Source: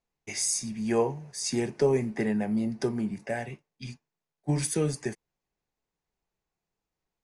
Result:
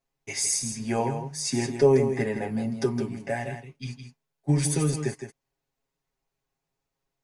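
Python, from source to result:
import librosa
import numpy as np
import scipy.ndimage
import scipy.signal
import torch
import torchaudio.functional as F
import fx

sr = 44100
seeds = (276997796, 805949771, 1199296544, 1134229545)

p1 = x + 0.84 * np.pad(x, (int(7.4 * sr / 1000.0), 0))[:len(x)]
y = p1 + fx.echo_single(p1, sr, ms=163, db=-8.5, dry=0)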